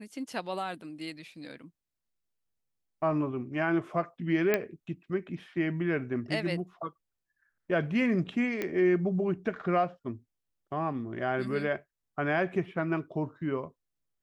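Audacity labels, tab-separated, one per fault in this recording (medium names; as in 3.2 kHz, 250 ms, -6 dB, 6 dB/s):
4.540000	4.540000	pop -12 dBFS
8.620000	8.620000	pop -18 dBFS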